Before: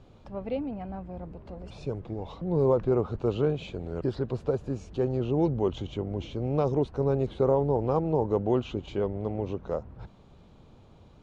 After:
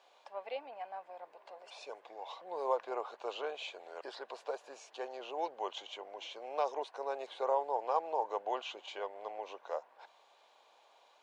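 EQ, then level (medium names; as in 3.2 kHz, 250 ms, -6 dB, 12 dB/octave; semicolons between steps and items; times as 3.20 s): high-pass 680 Hz 24 dB/octave; band-stop 1.3 kHz, Q 7; +1.0 dB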